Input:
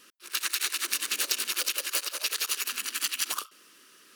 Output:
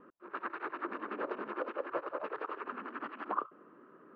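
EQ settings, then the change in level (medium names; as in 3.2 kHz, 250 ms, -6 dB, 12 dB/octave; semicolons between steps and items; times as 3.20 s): low-pass 1.1 kHz 24 dB/octave; distance through air 66 m; +8.5 dB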